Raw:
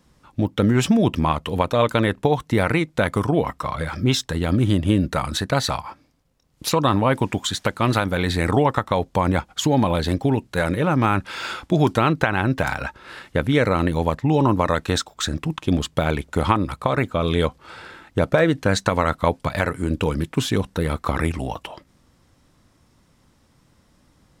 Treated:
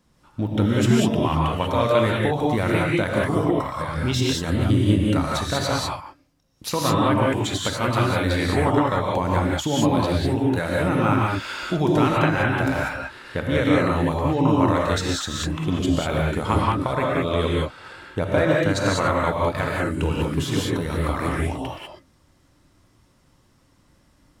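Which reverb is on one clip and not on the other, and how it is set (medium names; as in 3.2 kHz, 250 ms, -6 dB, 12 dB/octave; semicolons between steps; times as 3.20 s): gated-style reverb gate 220 ms rising, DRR -3.5 dB; trim -5.5 dB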